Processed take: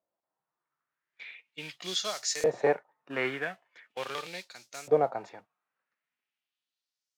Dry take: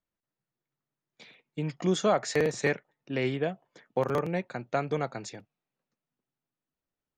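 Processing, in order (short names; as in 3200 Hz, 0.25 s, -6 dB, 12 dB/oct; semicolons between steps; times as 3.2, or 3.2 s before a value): modulation noise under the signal 21 dB; LFO band-pass saw up 0.41 Hz 600–6900 Hz; harmonic-percussive split harmonic +8 dB; gain +7 dB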